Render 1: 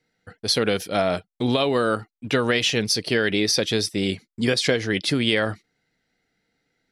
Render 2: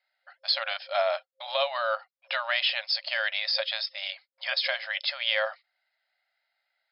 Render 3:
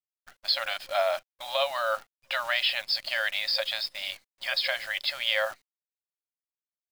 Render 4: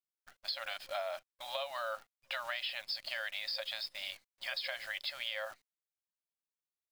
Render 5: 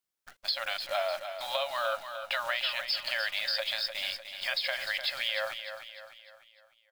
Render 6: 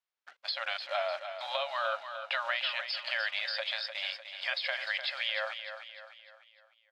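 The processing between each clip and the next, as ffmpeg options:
-af "afftfilt=real='re*between(b*sr/4096,530,5300)':imag='im*between(b*sr/4096,530,5300)':win_size=4096:overlap=0.75,volume=0.708"
-af "acrusher=bits=8:dc=4:mix=0:aa=0.000001"
-af "acompressor=threshold=0.0398:ratio=6,volume=0.473"
-af "aecho=1:1:301|602|903|1204|1505:0.355|0.163|0.0751|0.0345|0.0159,volume=2.24"
-af "highpass=560,lowpass=3800"

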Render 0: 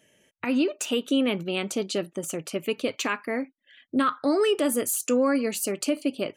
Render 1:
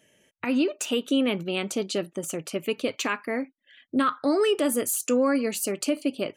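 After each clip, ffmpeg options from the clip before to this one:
-af anull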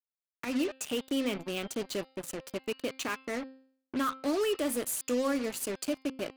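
-af "acrusher=bits=4:mix=0:aa=0.5,bandreject=f=263.8:t=h:w=4,bandreject=f=527.6:t=h:w=4,bandreject=f=791.4:t=h:w=4,bandreject=f=1055.2:t=h:w=4,bandreject=f=1319:t=h:w=4,bandreject=f=1582.8:t=h:w=4,bandreject=f=1846.6:t=h:w=4,bandreject=f=2110.4:t=h:w=4,bandreject=f=2374.2:t=h:w=4,bandreject=f=2638:t=h:w=4,bandreject=f=2901.8:t=h:w=4,bandreject=f=3165.6:t=h:w=4,bandreject=f=3429.4:t=h:w=4,bandreject=f=3693.2:t=h:w=4,bandreject=f=3957:t=h:w=4,bandreject=f=4220.8:t=h:w=4,bandreject=f=4484.6:t=h:w=4,bandreject=f=4748.4:t=h:w=4,bandreject=f=5012.2:t=h:w=4,volume=0.447"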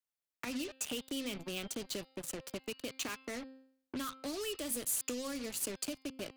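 -filter_complex "[0:a]acrossover=split=150|3000[s0][s1][s2];[s1]acompressor=threshold=0.01:ratio=6[s3];[s0][s3][s2]amix=inputs=3:normalize=0"

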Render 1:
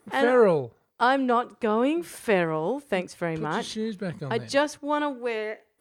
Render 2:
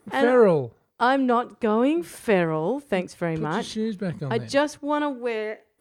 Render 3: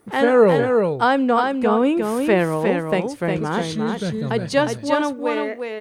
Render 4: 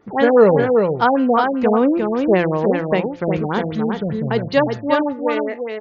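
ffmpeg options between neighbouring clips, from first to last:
-af "lowshelf=f=390:g=5"
-af "aecho=1:1:357:0.596,volume=1.41"
-af "bandreject=f=173.2:t=h:w=4,bandreject=f=346.4:t=h:w=4,bandreject=f=519.6:t=h:w=4,bandreject=f=692.8:t=h:w=4,bandreject=f=866:t=h:w=4,bandreject=f=1039.2:t=h:w=4,bandreject=f=1212.4:t=h:w=4,bandreject=f=1385.6:t=h:w=4,bandreject=f=1558.8:t=h:w=4,bandreject=f=1732:t=h:w=4,bandreject=f=1905.2:t=h:w=4,bandreject=f=2078.4:t=h:w=4,bandreject=f=2251.6:t=h:w=4,bandreject=f=2424.8:t=h:w=4,bandreject=f=2598:t=h:w=4,bandreject=f=2771.2:t=h:w=4,afftfilt=real='re*lt(b*sr/1024,780*pow(7300/780,0.5+0.5*sin(2*PI*5.1*pts/sr)))':imag='im*lt(b*sr/1024,780*pow(7300/780,0.5+0.5*sin(2*PI*5.1*pts/sr)))':win_size=1024:overlap=0.75,volume=1.33"

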